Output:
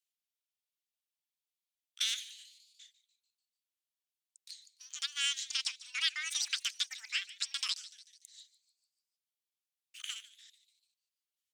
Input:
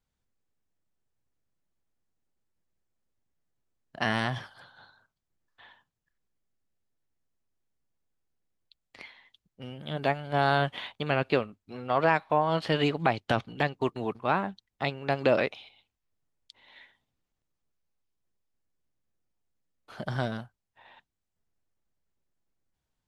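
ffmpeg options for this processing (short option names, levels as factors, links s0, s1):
-filter_complex "[0:a]highpass=f=1300:w=0.5412,highpass=f=1300:w=1.3066,asplit=2[s0][s1];[s1]asplit=5[s2][s3][s4][s5][s6];[s2]adelay=294,afreqshift=110,volume=0.141[s7];[s3]adelay=588,afreqshift=220,volume=0.075[s8];[s4]adelay=882,afreqshift=330,volume=0.0398[s9];[s5]adelay=1176,afreqshift=440,volume=0.0211[s10];[s6]adelay=1470,afreqshift=550,volume=0.0111[s11];[s7][s8][s9][s10][s11]amix=inputs=5:normalize=0[s12];[s0][s12]amix=inputs=2:normalize=0,asetrate=88200,aresample=44100"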